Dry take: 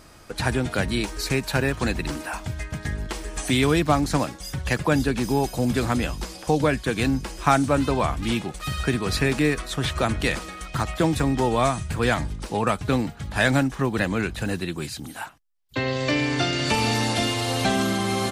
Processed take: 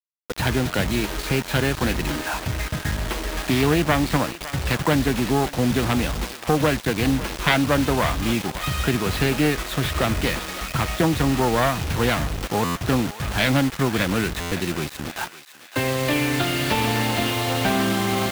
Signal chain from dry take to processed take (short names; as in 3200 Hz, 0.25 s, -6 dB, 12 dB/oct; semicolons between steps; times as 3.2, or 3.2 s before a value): self-modulated delay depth 0.41 ms; LPF 4100 Hz 24 dB/oct; in parallel at -2 dB: compressor 6:1, threshold -29 dBFS, peak gain reduction 13.5 dB; on the sum: bit-crush 5-bit; on a send: thinning echo 0.556 s, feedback 50%, high-pass 1100 Hz, level -11 dB; on the sum: stuck buffer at 12.64/14.4, samples 512, times 9